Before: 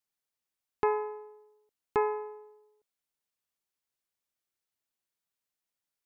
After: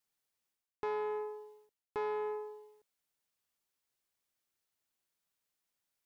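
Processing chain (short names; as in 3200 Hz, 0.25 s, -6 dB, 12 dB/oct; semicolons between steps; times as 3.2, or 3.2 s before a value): reverse; compressor 5:1, threshold -42 dBFS, peak gain reduction 17.5 dB; reverse; sample leveller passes 1; gain +4.5 dB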